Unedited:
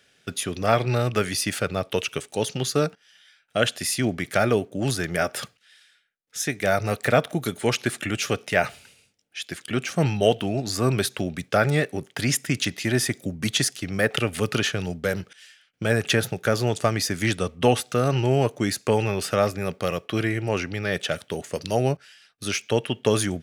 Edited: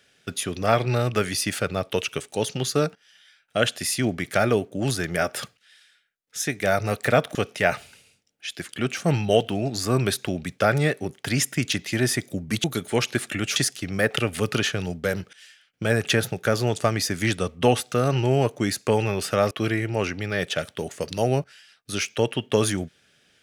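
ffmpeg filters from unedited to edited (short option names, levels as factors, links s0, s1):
-filter_complex "[0:a]asplit=5[s0][s1][s2][s3][s4];[s0]atrim=end=7.352[s5];[s1]atrim=start=8.268:end=13.562[s6];[s2]atrim=start=7.348:end=8.272[s7];[s3]atrim=start=13.558:end=19.512[s8];[s4]atrim=start=20.038[s9];[s5][s6]acrossfade=d=0.004:c1=hsin:c2=hsin[s10];[s10][s7]acrossfade=d=0.004:c1=hsin:c2=hsin[s11];[s11][s8]acrossfade=d=0.004:c1=hsin:c2=hsin[s12];[s12][s9]acrossfade=d=0.004:c1=hsin:c2=hsin"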